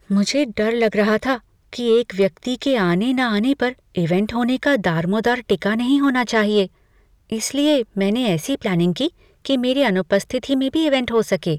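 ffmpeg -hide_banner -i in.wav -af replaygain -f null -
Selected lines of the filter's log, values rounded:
track_gain = -0.4 dB
track_peak = 0.293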